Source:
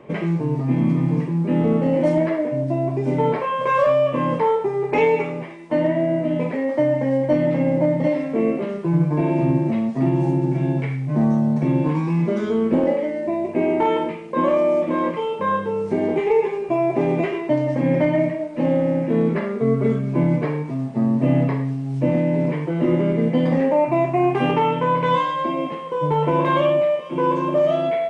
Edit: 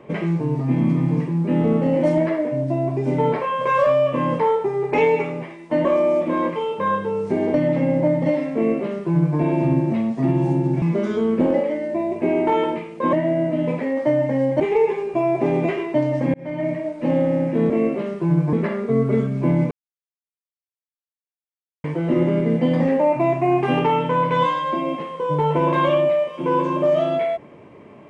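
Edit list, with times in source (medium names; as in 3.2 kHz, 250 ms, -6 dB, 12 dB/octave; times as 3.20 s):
5.85–7.32 s: swap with 14.46–16.15 s
8.33–9.16 s: copy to 19.25 s
10.60–12.15 s: delete
17.89–18.42 s: fade in
20.43–22.56 s: mute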